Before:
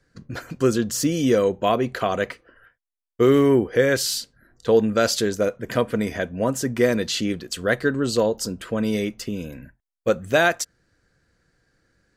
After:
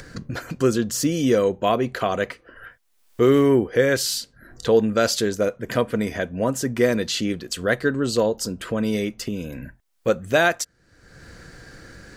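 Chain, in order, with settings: upward compressor, threshold -24 dBFS

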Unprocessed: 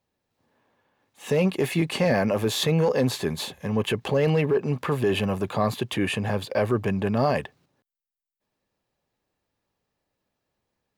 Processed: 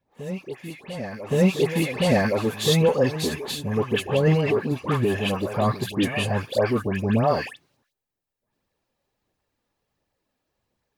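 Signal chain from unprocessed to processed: phaser 1.4 Hz, delay 4.3 ms, feedback 39%; phase dispersion highs, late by 119 ms, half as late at 1.6 kHz; reverse echo 1119 ms -13 dB; trim +1 dB

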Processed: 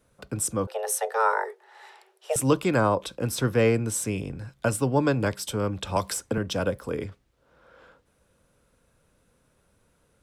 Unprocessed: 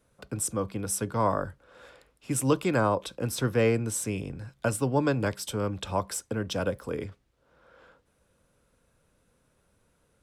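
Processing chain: 0.67–2.36 s: frequency shift +330 Hz; 5.96–6.38 s: three bands compressed up and down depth 70%; trim +2.5 dB

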